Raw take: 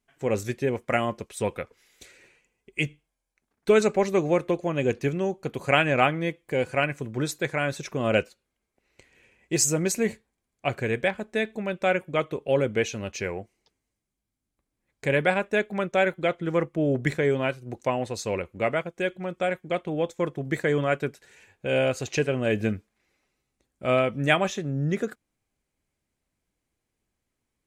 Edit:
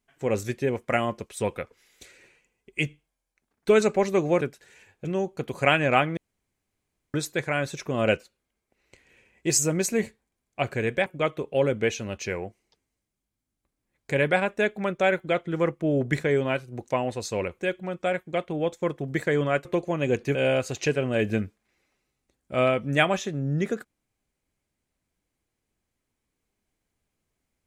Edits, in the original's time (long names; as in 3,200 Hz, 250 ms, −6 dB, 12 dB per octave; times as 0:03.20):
0:04.41–0:05.11: swap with 0:21.02–0:21.66
0:06.23–0:07.20: fill with room tone
0:11.12–0:12.00: remove
0:18.53–0:18.96: remove